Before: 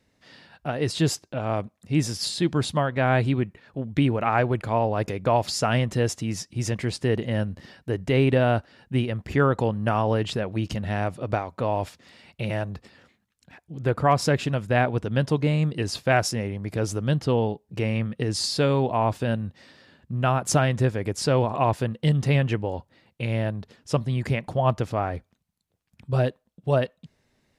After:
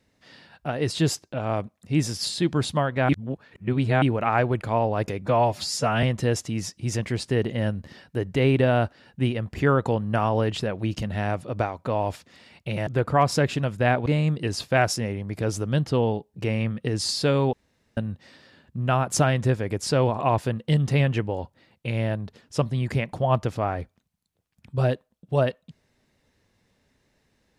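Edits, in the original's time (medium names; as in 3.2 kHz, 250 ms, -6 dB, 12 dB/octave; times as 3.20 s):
3.09–4.02 s: reverse
5.22–5.76 s: stretch 1.5×
12.60–13.77 s: delete
14.96–15.41 s: delete
18.88–19.32 s: room tone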